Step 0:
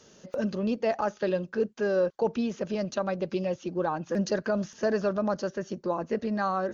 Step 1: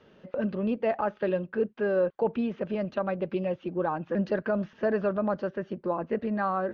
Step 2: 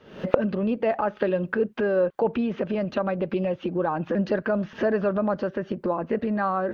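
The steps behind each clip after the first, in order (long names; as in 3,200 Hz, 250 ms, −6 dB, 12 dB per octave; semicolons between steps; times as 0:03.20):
low-pass filter 3,000 Hz 24 dB per octave
camcorder AGC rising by 77 dB per second; level +3 dB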